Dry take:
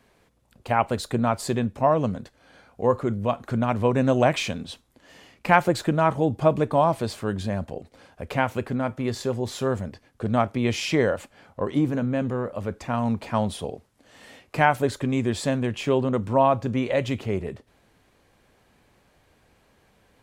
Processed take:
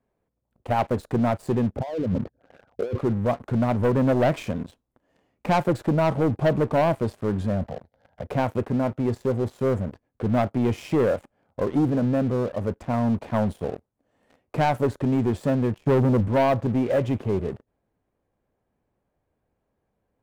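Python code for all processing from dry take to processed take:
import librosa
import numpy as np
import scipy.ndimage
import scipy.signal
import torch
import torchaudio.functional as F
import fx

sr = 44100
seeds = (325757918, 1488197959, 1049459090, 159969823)

y = fx.chain(x, sr, fx.envelope_sharpen(power=3.0),
    fx.highpass(hz=61.0, slope=12),
    fx.over_compress(threshold_db=-30.0, ratio=-1.0), at=(1.76, 2.99))
y = fx.chain(y, sr, fx.highpass(hz=46.0, slope=24),
    fx.fixed_phaser(hz=1700.0, stages=8),
    fx.band_squash(depth_pct=70), at=(7.64, 8.27))
y = fx.chain(y, sr, fx.low_shelf(hz=240.0, db=12.0),
    fx.upward_expand(threshold_db=-32.0, expansion=1.5), at=(15.78, 16.28))
y = fx.curve_eq(y, sr, hz=(650.0, 4400.0, 10000.0), db=(0, -17, -12))
y = fx.leveller(y, sr, passes=3)
y = y * 10.0 ** (-7.5 / 20.0)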